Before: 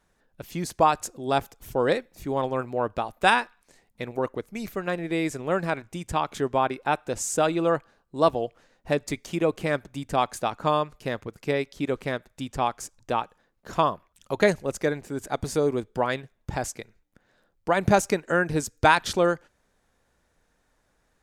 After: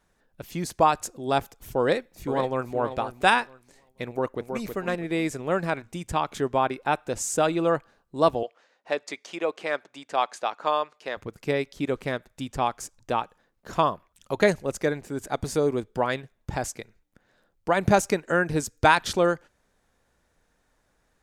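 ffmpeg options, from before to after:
-filter_complex "[0:a]asplit=2[s0][s1];[s1]afade=t=in:st=1.79:d=0.01,afade=t=out:st=2.73:d=0.01,aecho=0:1:480|960|1440:0.316228|0.0632456|0.0126491[s2];[s0][s2]amix=inputs=2:normalize=0,asplit=2[s3][s4];[s4]afade=t=in:st=4.08:d=0.01,afade=t=out:st=4.63:d=0.01,aecho=0:1:320|640|960|1280:0.501187|0.150356|0.0451069|0.0135321[s5];[s3][s5]amix=inputs=2:normalize=0,asettb=1/sr,asplit=3[s6][s7][s8];[s6]atrim=end=8.434[s9];[s7]atrim=start=8.43:end=11.17,asetpts=PTS-STARTPTS,afade=t=in:d=0.004:c=qsin,afade=t=out:st=2.736:d=0.004:c=qsin,highpass=500,lowpass=6000[s10];[s8]atrim=start=11.166[s11];[s9][s10]acrossfade=d=0.004:c1=hsin:c2=qsin[s12];[s12][s11]acrossfade=d=0.004:c1=qsin:c2=hsin"

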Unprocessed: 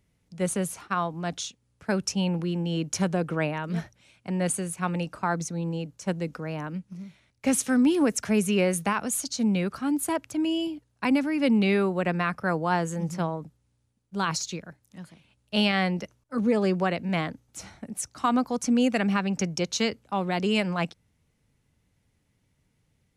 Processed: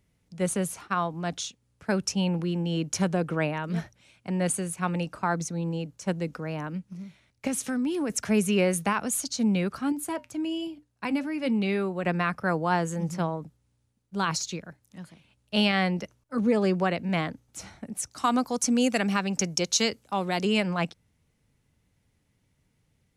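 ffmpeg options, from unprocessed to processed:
-filter_complex "[0:a]asettb=1/sr,asplit=3[s0][s1][s2];[s0]atrim=end=7.474[s3];[s1]atrim=start=7.47:end=8.1,asetpts=PTS-STARTPTS,afade=t=in:d=0.004:c=qsin,afade=t=out:st=0.626:d=0.004:c=qsin,acompressor=threshold=0.0398:ratio=2.5:attack=3.2:release=140:knee=1:detection=peak[s4];[s2]atrim=start=8.096[s5];[s3][s4]acrossfade=d=0.004:c1=hsin:c2=qsin[s6];[s6][s5]acrossfade=d=0.004:c1=qsin:c2=hsin,asettb=1/sr,asplit=3[s7][s8][s9];[s7]atrim=end=9.924[s10];[s8]atrim=start=9.92:end=12.04,asetpts=PTS-STARTPTS,afade=t=in:d=0.004:c=qsin,afade=t=out:st=2.116:d=0.004:c=qsin,flanger=delay=4.9:depth=1.1:regen=-80:speed=1.2:shape=sinusoidal[s11];[s9]atrim=start=12.036[s12];[s10][s11]acrossfade=d=0.004:c1=hsin:c2=qsin[s13];[s13][s12]acrossfade=d=0.004:c1=qsin:c2=hsin,asettb=1/sr,asplit=3[s14][s15][s16];[s14]atrim=end=18.114[s17];[s15]atrim=start=18.11:end=20.45,asetpts=PTS-STARTPTS,afade=t=in:d=0.004:c=qsin,afade=t=out:st=2.336:d=0.004:c=qsin,bass=f=250:g=-3,treble=f=4000:g=8[s18];[s16]atrim=start=20.446[s19];[s17][s18]acrossfade=d=0.004:c1=hsin:c2=qsin[s20];[s20][s19]acrossfade=d=0.004:c1=qsin:c2=hsin"

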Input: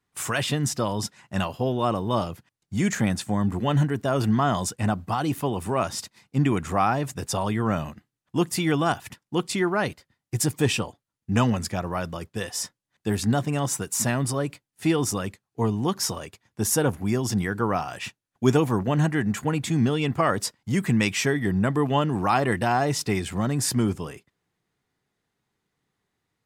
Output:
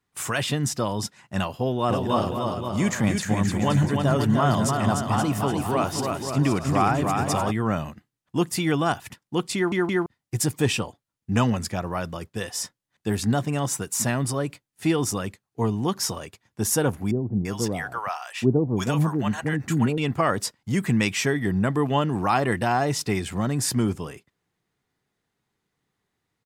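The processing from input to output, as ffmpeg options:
-filter_complex "[0:a]asplit=3[s0][s1][s2];[s0]afade=t=out:st=1.88:d=0.02[s3];[s1]aecho=1:1:300|525|693.8|820.3|915.2:0.631|0.398|0.251|0.158|0.1,afade=t=in:st=1.88:d=0.02,afade=t=out:st=7.5:d=0.02[s4];[s2]afade=t=in:st=7.5:d=0.02[s5];[s3][s4][s5]amix=inputs=3:normalize=0,asettb=1/sr,asplit=3[s6][s7][s8];[s6]atrim=end=17.114[s9];[s7]atrim=start=17.11:end=19.98,asetpts=PTS-STARTPTS,afade=t=in:d=0.004:c=qsin,afade=t=out:st=2.866:d=0.004:c=qsin,acrossover=split=660[s10][s11];[s11]adelay=340[s12];[s10][s12]amix=inputs=2:normalize=0,atrim=end_sample=126567[s13];[s8]atrim=start=19.976[s14];[s9][s13]acrossfade=d=0.004:c1=hsin:c2=qsin[s15];[s15][s14]acrossfade=d=0.004:c1=qsin:c2=hsin,asplit=4[s16][s17][s18][s19];[s16]atrim=end=9.722[s20];[s17]atrim=start=9.548:end=9.722[s21];[s18]atrim=start=9.548:end=9.722[s22];[s19]atrim=start=10.058[s23];[s20][s21]acrossfade=d=0.004:c1=hsin:c2=hsin[s24];[s24][s22]acrossfade=d=0.004:c1=hsin:c2=hsin[s25];[s25][s23]acrossfade=d=0.004:c1=hsin:c2=hsin"

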